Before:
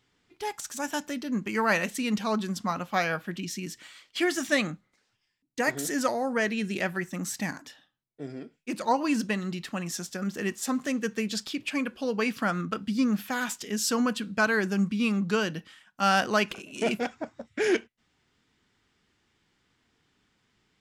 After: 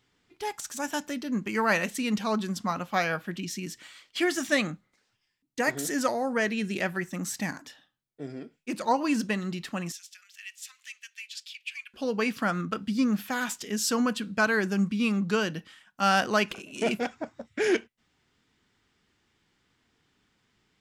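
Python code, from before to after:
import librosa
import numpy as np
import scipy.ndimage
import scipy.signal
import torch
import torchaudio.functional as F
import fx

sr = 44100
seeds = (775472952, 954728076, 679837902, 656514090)

y = fx.ladder_highpass(x, sr, hz=2100.0, resonance_pct=45, at=(9.92, 11.94))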